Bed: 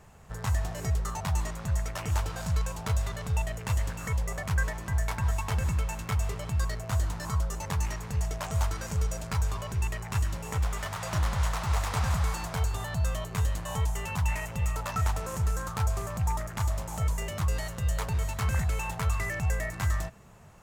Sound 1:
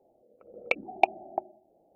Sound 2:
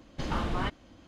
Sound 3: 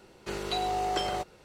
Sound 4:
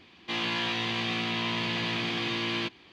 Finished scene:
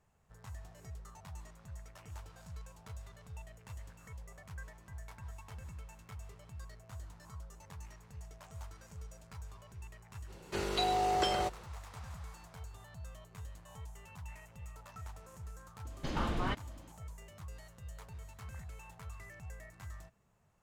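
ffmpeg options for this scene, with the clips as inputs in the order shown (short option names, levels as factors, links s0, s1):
-filter_complex "[0:a]volume=0.106[s0];[2:a]aresample=32000,aresample=44100[s1];[3:a]atrim=end=1.44,asetpts=PTS-STARTPTS,volume=0.891,afade=t=in:d=0.05,afade=t=out:st=1.39:d=0.05,adelay=452466S[s2];[s1]atrim=end=1.07,asetpts=PTS-STARTPTS,volume=0.668,afade=t=in:d=0.004:c=hsin,afade=t=out:st=1.066:d=0.004:c=hsin,adelay=15850[s3];[s0][s2][s3]amix=inputs=3:normalize=0"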